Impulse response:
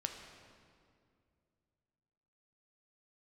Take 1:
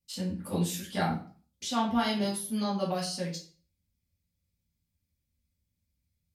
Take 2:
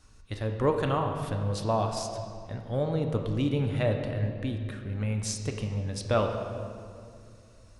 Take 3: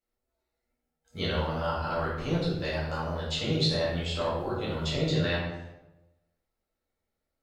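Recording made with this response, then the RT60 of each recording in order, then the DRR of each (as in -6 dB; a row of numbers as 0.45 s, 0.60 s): 2; 0.45 s, 2.3 s, 1.0 s; -6.5 dB, 3.5 dB, -8.0 dB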